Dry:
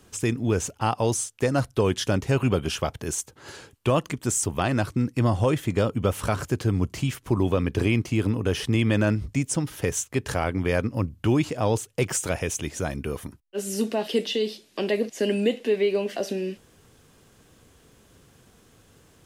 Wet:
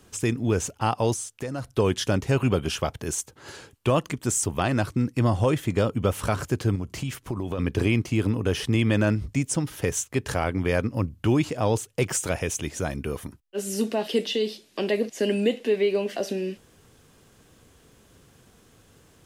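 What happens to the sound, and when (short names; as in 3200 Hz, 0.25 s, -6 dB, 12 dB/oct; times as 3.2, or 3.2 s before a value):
1.13–1.74 compressor 3:1, threshold -30 dBFS
6.75–7.59 compressor, threshold -25 dBFS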